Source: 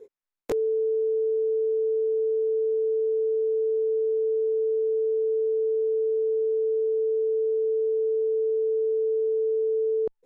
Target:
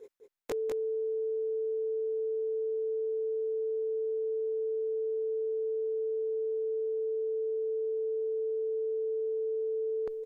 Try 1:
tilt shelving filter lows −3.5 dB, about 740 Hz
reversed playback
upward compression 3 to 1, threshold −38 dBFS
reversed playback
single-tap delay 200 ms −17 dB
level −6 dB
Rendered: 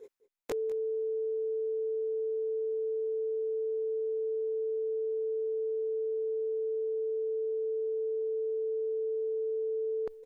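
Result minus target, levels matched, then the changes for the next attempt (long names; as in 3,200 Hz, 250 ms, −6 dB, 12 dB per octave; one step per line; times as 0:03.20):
echo-to-direct −11.5 dB
change: single-tap delay 200 ms −5.5 dB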